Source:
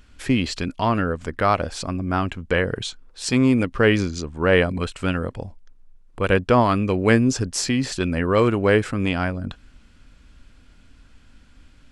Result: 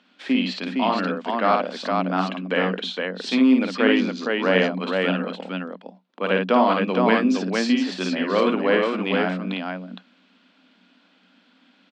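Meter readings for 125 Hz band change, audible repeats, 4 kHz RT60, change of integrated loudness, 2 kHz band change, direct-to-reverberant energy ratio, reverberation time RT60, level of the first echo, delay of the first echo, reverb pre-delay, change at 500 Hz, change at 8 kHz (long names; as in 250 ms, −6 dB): −9.5 dB, 2, no reverb audible, −0.5 dB, 0.0 dB, no reverb audible, no reverb audible, −4.0 dB, 54 ms, no reverb audible, −0.5 dB, −11.5 dB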